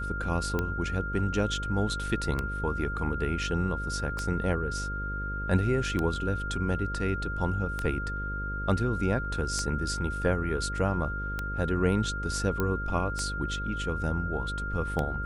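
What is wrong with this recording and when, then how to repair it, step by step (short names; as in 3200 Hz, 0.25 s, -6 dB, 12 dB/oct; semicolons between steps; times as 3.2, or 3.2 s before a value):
buzz 50 Hz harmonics 11 -35 dBFS
tick 33 1/3 rpm -16 dBFS
tone 1400 Hz -34 dBFS
12.6 pop -15 dBFS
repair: de-click; de-hum 50 Hz, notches 11; notch 1400 Hz, Q 30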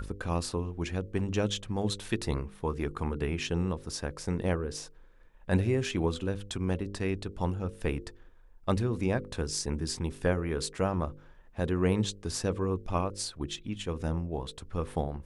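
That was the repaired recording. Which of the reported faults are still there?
none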